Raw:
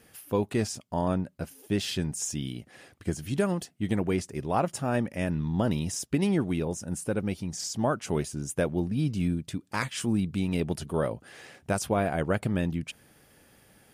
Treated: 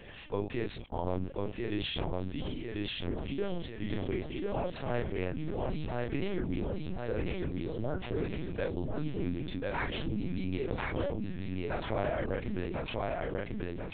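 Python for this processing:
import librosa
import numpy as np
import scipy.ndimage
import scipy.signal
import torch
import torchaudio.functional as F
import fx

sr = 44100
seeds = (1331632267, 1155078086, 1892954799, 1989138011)

y = fx.low_shelf(x, sr, hz=130.0, db=-10.5)
y = fx.notch(y, sr, hz=1300.0, q=5.5)
y = fx.rider(y, sr, range_db=4, speed_s=2.0)
y = fx.rotary_switch(y, sr, hz=8.0, then_hz=0.85, switch_at_s=2.65)
y = fx.doubler(y, sr, ms=33.0, db=-3.0)
y = fx.echo_feedback(y, sr, ms=1043, feedback_pct=37, wet_db=-4.0)
y = fx.lpc_vocoder(y, sr, seeds[0], excitation='pitch_kept', order=8)
y = fx.env_flatten(y, sr, amount_pct=50)
y = y * librosa.db_to_amplitude(-7.0)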